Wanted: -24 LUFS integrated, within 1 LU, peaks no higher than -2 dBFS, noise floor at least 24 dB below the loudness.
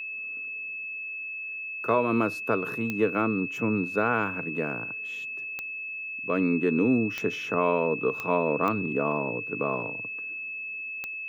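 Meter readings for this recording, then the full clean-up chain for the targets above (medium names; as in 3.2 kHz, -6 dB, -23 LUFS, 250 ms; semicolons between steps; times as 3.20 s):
clicks found 6; steady tone 2.6 kHz; tone level -33 dBFS; loudness -28.0 LUFS; peak level -11.5 dBFS; loudness target -24.0 LUFS
-> de-click; band-stop 2.6 kHz, Q 30; trim +4 dB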